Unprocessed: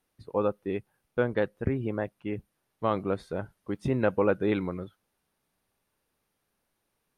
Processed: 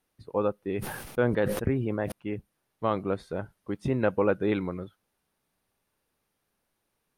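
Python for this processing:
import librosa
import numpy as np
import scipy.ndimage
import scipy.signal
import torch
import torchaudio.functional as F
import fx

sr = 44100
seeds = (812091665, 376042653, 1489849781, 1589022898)

y = fx.sustainer(x, sr, db_per_s=45.0, at=(0.76, 2.12))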